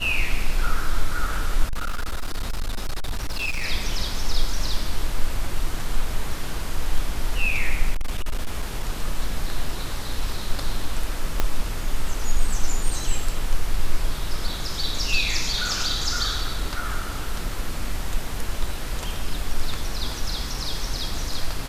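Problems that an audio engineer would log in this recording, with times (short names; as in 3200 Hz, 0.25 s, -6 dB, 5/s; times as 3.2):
1.64–3.65 clipped -21 dBFS
7.91–8.83 clipped -19 dBFS
11.4 pop -7 dBFS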